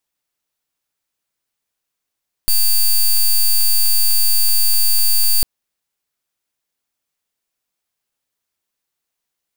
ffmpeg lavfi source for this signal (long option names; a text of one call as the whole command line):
ffmpeg -f lavfi -i "aevalsrc='0.237*(2*lt(mod(4600*t,1),0.1)-1)':duration=2.95:sample_rate=44100" out.wav